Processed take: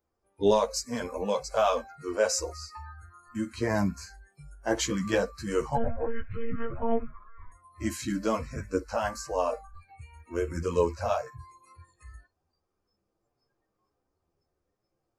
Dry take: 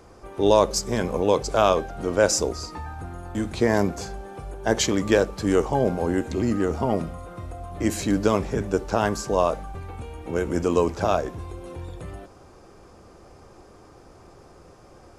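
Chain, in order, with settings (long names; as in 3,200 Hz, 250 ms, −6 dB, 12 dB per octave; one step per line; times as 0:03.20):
0:05.76–0:07.52: one-pitch LPC vocoder at 8 kHz 230 Hz
multi-voice chorus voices 4, 0.27 Hz, delay 12 ms, depth 3.5 ms
noise reduction from a noise print of the clip's start 26 dB
level −3 dB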